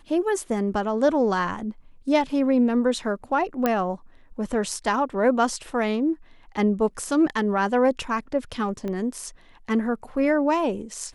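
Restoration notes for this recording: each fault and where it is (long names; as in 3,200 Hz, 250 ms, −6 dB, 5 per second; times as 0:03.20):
0:03.66: click −9 dBFS
0:08.88: click −20 dBFS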